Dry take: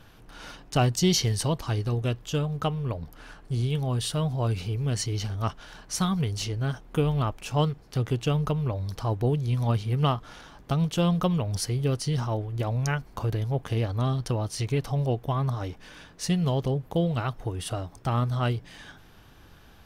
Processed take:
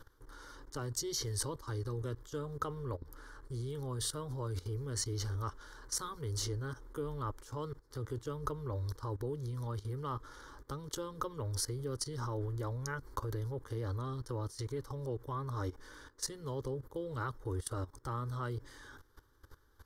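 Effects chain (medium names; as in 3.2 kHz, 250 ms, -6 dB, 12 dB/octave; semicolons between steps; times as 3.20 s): level held to a coarse grid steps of 17 dB; static phaser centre 700 Hz, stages 6; trim +1.5 dB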